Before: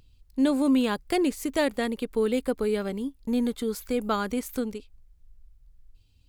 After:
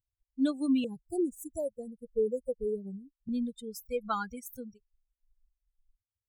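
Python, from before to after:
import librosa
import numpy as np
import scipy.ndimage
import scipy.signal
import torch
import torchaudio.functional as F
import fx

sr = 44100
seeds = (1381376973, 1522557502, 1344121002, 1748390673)

y = fx.bin_expand(x, sr, power=3.0)
y = fx.ellip_bandstop(y, sr, low_hz=530.0, high_hz=8000.0, order=3, stop_db=50, at=(0.84, 3.29))
y = fx.dynamic_eq(y, sr, hz=220.0, q=2.9, threshold_db=-42.0, ratio=4.0, max_db=-3)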